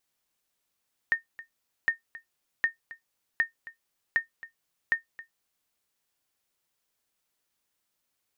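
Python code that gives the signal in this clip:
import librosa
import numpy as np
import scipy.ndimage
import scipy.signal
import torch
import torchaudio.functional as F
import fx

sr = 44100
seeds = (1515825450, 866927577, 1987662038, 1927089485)

y = fx.sonar_ping(sr, hz=1830.0, decay_s=0.13, every_s=0.76, pings=6, echo_s=0.27, echo_db=-18.5, level_db=-15.0)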